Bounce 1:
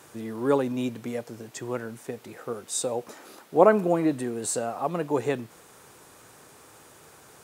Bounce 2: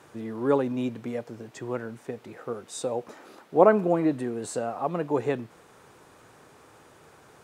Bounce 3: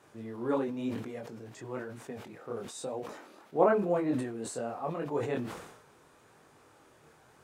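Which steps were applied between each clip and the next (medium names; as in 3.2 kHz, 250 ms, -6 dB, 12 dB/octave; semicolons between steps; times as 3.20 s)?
low-pass 2.7 kHz 6 dB/octave
chorus voices 2, 0.99 Hz, delay 23 ms, depth 3.7 ms; decay stretcher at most 61 dB/s; trim -3.5 dB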